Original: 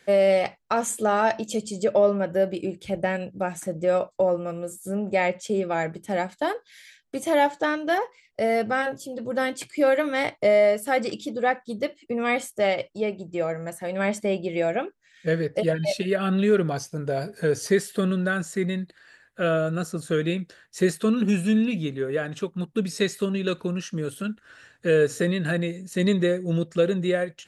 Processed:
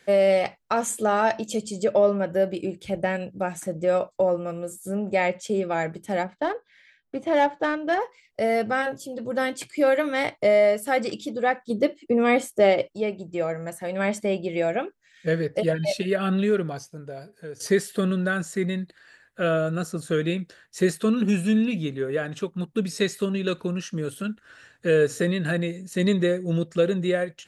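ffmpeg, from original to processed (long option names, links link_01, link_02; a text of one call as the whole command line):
ffmpeg -i in.wav -filter_complex "[0:a]asettb=1/sr,asplit=3[link_01][link_02][link_03];[link_01]atrim=end=6.234[link_04];[link_02]atrim=start=6.23:end=8,asetpts=PTS-STARTPTS,afade=type=in:duration=0.004:curve=qsin,afade=type=out:start_time=1.766:duration=0.004:curve=qsin,adynamicsmooth=sensitivity=1.5:basefreq=2200[link_05];[link_03]atrim=start=7.996[link_06];[link_04][link_05]acrossfade=duration=0.004:curve1=hsin:curve2=qsin[link_07];[link_07][link_06]acrossfade=duration=0.004:curve1=qsin:curve2=hsin,asettb=1/sr,asplit=3[link_08][link_09][link_10];[link_08]atrim=end=11.704[link_11];[link_09]atrim=start=11.7:end=12.88,asetpts=PTS-STARTPTS,afade=type=in:duration=0.004:curve=qsin,afade=type=out:start_time=1.176:duration=0.004:curve=qsin,equalizer=frequency=340:width=0.77:gain=8.5[link_12];[link_10]atrim=start=12.876[link_13];[link_11][link_12]acrossfade=duration=0.004:curve1=hsin:curve2=qsin[link_14];[link_14][link_13]acrossfade=duration=0.004:curve1=qsin:curve2=hsin,asplit=2[link_15][link_16];[link_15]atrim=end=17.6,asetpts=PTS-STARTPTS,afade=type=out:start_time=16.32:duration=1.28:curve=qua:silence=0.177828[link_17];[link_16]atrim=start=17.6,asetpts=PTS-STARTPTS,afade=type=in:duration=0.004:curve=hsin:silence=0.177828[link_18];[link_17][link_18]concat=n=2:v=0:a=1" out.wav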